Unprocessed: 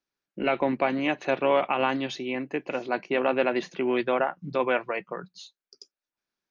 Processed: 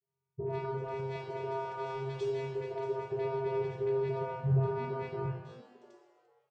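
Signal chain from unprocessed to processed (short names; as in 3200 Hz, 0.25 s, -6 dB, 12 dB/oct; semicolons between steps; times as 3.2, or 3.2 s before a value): Wiener smoothing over 15 samples; 0.69–3.02 tone controls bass -7 dB, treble +9 dB; limiter -28.5 dBFS, peak gain reduction 17.5 dB; dispersion highs, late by 89 ms, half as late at 1100 Hz; vocoder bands 8, square 134 Hz; frequency-shifting echo 0.344 s, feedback 46%, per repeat +110 Hz, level -19 dB; non-linear reverb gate 0.36 s falling, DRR -1.5 dB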